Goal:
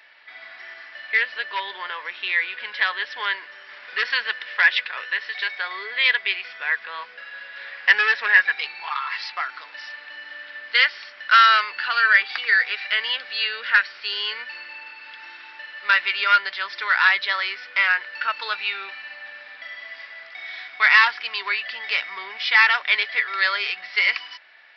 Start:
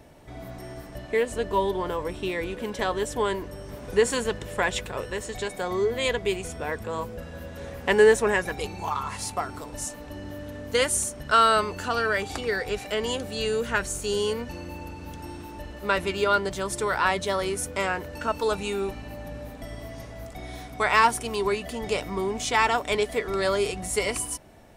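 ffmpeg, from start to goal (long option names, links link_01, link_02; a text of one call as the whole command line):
ffmpeg -i in.wav -af "aresample=11025,asoftclip=type=hard:threshold=-16.5dB,aresample=44100,highpass=frequency=1800:width_type=q:width=2.6,volume=6dB" out.wav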